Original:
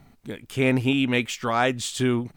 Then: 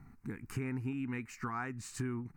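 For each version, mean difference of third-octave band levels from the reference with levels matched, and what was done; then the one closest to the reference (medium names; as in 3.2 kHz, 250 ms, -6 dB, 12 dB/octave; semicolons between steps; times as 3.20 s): 5.5 dB: recorder AGC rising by 9.9 dB/s; treble shelf 3.6 kHz -10.5 dB; compression 2.5:1, threshold -35 dBFS, peak gain reduction 12 dB; static phaser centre 1.4 kHz, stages 4; trim -1.5 dB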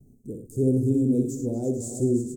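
12.0 dB: multi-tap echo 61/105/238/338/446 ms -6.5/-12/-16.5/-9/-11.5 dB; gate with hold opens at -46 dBFS; elliptic band-stop 440–7300 Hz, stop band 50 dB; treble shelf 8.5 kHz -6 dB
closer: first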